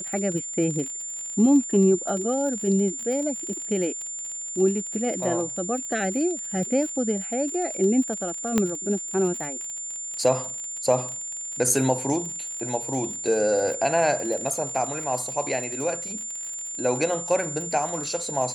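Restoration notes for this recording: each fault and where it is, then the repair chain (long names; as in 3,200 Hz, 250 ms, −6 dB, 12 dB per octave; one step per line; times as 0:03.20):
surface crackle 48 per second −31 dBFS
whistle 7,200 Hz −31 dBFS
0:08.58: click −8 dBFS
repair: click removal
notch filter 7,200 Hz, Q 30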